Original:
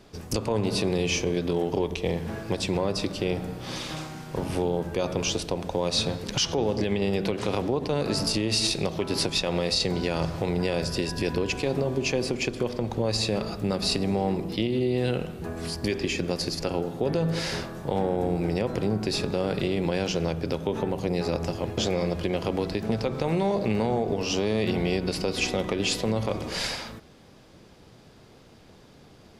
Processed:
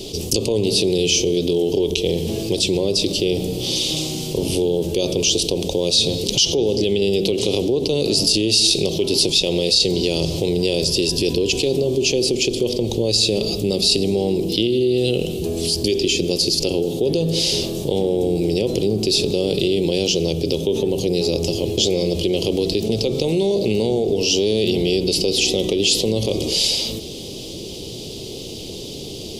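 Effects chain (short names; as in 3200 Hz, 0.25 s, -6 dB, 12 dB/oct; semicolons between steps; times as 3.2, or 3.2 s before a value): EQ curve 240 Hz 0 dB, 390 Hz +8 dB, 1600 Hz -24 dB, 3000 Hz +10 dB; fast leveller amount 50%; gain -1 dB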